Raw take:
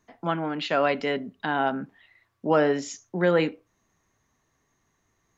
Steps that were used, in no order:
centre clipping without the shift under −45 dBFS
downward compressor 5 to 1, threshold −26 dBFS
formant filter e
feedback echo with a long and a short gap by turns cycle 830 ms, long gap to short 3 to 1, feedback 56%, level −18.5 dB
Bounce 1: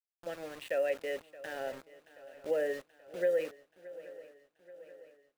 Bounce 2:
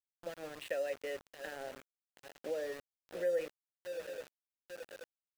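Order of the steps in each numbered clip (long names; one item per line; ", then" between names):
formant filter, then downward compressor, then centre clipping without the shift, then feedback echo with a long and a short gap by turns
feedback echo with a long and a short gap by turns, then downward compressor, then formant filter, then centre clipping without the shift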